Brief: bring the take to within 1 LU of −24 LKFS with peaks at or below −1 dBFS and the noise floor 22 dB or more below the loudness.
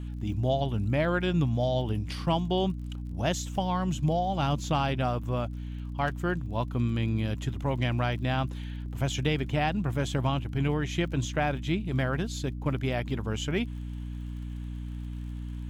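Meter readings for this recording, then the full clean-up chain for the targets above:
crackle rate 44 per second; mains hum 60 Hz; hum harmonics up to 300 Hz; level of the hum −33 dBFS; integrated loudness −30.0 LKFS; sample peak −13.0 dBFS; target loudness −24.0 LKFS
→ click removal
mains-hum notches 60/120/180/240/300 Hz
level +6 dB

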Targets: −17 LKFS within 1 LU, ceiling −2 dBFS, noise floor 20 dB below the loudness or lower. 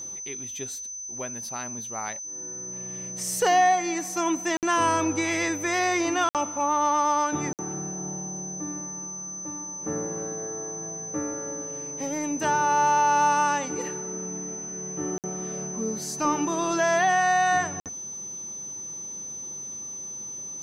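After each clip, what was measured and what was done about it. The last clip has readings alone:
number of dropouts 5; longest dropout 58 ms; interfering tone 6,100 Hz; level of the tone −34 dBFS; integrated loudness −26.5 LKFS; sample peak −11.0 dBFS; target loudness −17.0 LKFS
→ repair the gap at 0:04.57/0:06.29/0:07.53/0:15.18/0:17.80, 58 ms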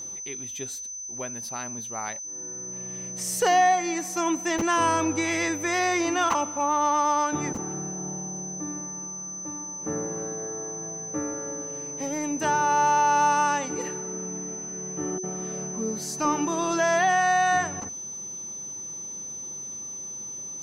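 number of dropouts 0; interfering tone 6,100 Hz; level of the tone −34 dBFS
→ notch filter 6,100 Hz, Q 30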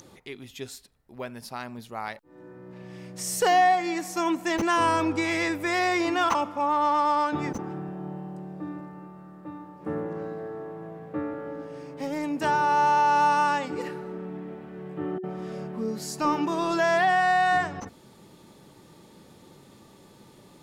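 interfering tone none found; integrated loudness −26.0 LKFS; sample peak −11.5 dBFS; target loudness −17.0 LKFS
→ level +9 dB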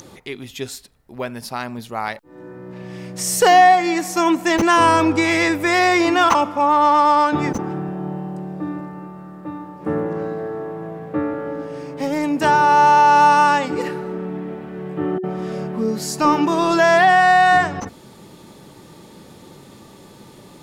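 integrated loudness −17.0 LKFS; sample peak −2.5 dBFS; background noise floor −44 dBFS

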